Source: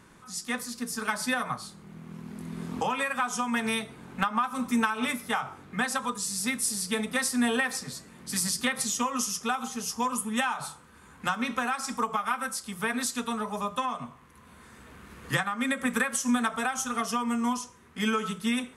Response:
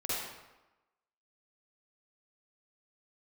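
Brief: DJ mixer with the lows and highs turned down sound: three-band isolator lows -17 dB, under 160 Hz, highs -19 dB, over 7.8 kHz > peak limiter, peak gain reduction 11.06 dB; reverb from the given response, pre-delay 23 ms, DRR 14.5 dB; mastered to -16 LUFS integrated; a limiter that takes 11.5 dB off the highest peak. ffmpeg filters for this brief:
-filter_complex "[0:a]alimiter=limit=0.0891:level=0:latency=1,asplit=2[s0][s1];[1:a]atrim=start_sample=2205,adelay=23[s2];[s1][s2]afir=irnorm=-1:irlink=0,volume=0.1[s3];[s0][s3]amix=inputs=2:normalize=0,acrossover=split=160 7800:gain=0.141 1 0.112[s4][s5][s6];[s4][s5][s6]amix=inputs=3:normalize=0,volume=13.3,alimiter=limit=0.447:level=0:latency=1"

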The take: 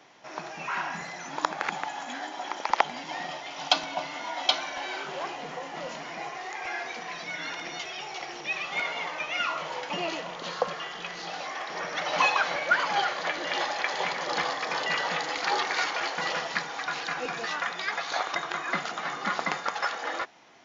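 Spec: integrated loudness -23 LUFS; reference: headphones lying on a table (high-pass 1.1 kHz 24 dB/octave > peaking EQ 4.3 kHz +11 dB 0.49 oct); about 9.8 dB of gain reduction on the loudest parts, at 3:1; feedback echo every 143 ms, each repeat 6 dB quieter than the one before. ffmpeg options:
-af "acompressor=threshold=0.0224:ratio=3,highpass=f=1100:w=0.5412,highpass=f=1100:w=1.3066,equalizer=f=4300:t=o:w=0.49:g=11,aecho=1:1:143|286|429|572|715|858:0.501|0.251|0.125|0.0626|0.0313|0.0157,volume=3.16"

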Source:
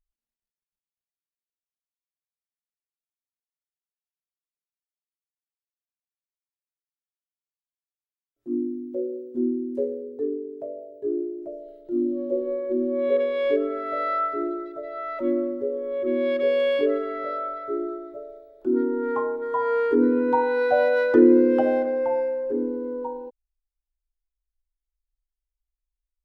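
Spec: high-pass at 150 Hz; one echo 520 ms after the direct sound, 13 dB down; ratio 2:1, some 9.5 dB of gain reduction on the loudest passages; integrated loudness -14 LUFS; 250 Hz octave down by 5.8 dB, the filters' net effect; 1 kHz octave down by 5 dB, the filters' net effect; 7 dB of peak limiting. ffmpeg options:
-af "highpass=150,equalizer=f=250:t=o:g=-7,equalizer=f=1000:t=o:g=-6.5,acompressor=threshold=0.0224:ratio=2,alimiter=level_in=1.06:limit=0.0631:level=0:latency=1,volume=0.944,aecho=1:1:520:0.224,volume=10"

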